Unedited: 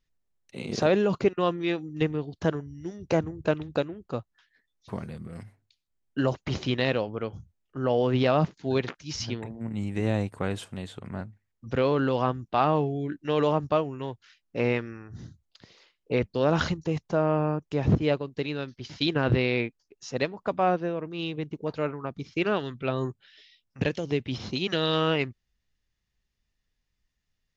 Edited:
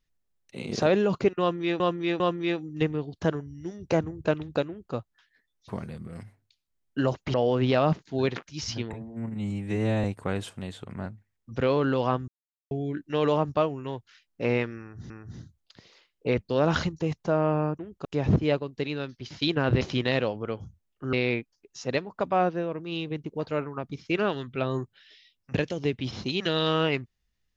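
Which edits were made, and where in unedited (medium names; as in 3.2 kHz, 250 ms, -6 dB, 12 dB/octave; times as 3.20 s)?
1.40–1.80 s: loop, 3 plays
3.88–4.14 s: copy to 17.64 s
6.54–7.86 s: move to 19.40 s
9.45–10.19 s: stretch 1.5×
12.43–12.86 s: mute
14.95–15.25 s: loop, 2 plays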